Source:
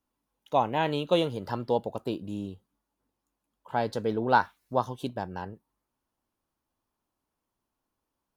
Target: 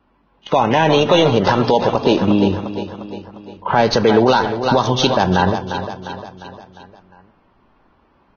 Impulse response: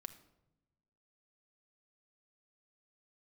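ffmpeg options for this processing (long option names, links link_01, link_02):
-filter_complex "[0:a]acrossover=split=3100[link_01][link_02];[link_02]acrusher=bits=5:dc=4:mix=0:aa=0.000001[link_03];[link_01][link_03]amix=inputs=2:normalize=0,acrossover=split=530|1500[link_04][link_05][link_06];[link_04]acompressor=threshold=-42dB:ratio=4[link_07];[link_05]acompressor=threshold=-39dB:ratio=4[link_08];[link_06]acompressor=threshold=-45dB:ratio=4[link_09];[link_07][link_08][link_09]amix=inputs=3:normalize=0,asettb=1/sr,asplit=3[link_10][link_11][link_12];[link_10]atrim=end=4.154[link_13];[link_11]atrim=start=4.15:end=5.32,asetpts=PTS-STARTPTS,afade=type=in:duration=0.004:curve=qsin,afade=type=out:start_time=1.166:duration=0.004:curve=qsin,highshelf=frequency=2600:width_type=q:width=1.5:gain=6[link_14];[link_12]atrim=start=5.316[link_15];[link_13][link_14]acrossfade=duration=0.004:curve1=hsin:curve2=qsin[link_16];[link_16][link_15]acrossfade=duration=0.004:curve1=qsin:curve2=hsin,aecho=1:1:352|704|1056|1408|1760:0.237|0.123|0.0641|0.0333|0.0173,asplit=2[link_17][link_18];[1:a]atrim=start_sample=2205[link_19];[link_18][link_19]afir=irnorm=-1:irlink=0,volume=4dB[link_20];[link_17][link_20]amix=inputs=2:normalize=0,dynaudnorm=framelen=130:gausssize=9:maxgain=4dB,alimiter=level_in=21dB:limit=-1dB:release=50:level=0:latency=1,volume=-2.5dB" -ar 16000 -c:a libvorbis -b:a 16k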